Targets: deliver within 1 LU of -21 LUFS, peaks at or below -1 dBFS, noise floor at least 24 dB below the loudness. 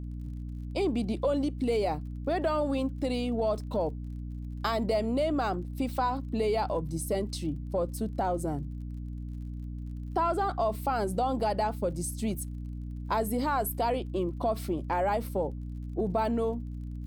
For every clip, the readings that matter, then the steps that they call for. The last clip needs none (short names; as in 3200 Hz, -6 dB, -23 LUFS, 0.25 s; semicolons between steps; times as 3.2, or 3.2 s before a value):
ticks 38/s; hum 60 Hz; harmonics up to 300 Hz; hum level -35 dBFS; loudness -31.0 LUFS; peak -15.5 dBFS; loudness target -21.0 LUFS
-> de-click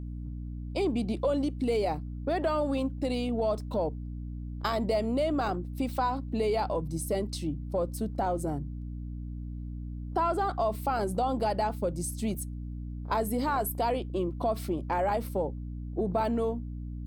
ticks 1.2/s; hum 60 Hz; harmonics up to 300 Hz; hum level -35 dBFS
-> notches 60/120/180/240/300 Hz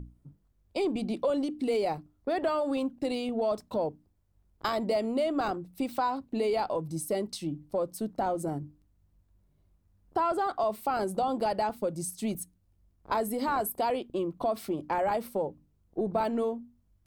hum none; loudness -31.0 LUFS; peak -16.5 dBFS; loudness target -21.0 LUFS
-> gain +10 dB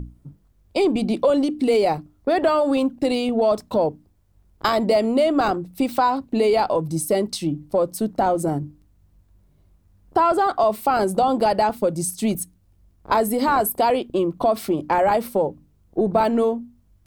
loudness -21.0 LUFS; peak -6.5 dBFS; noise floor -59 dBFS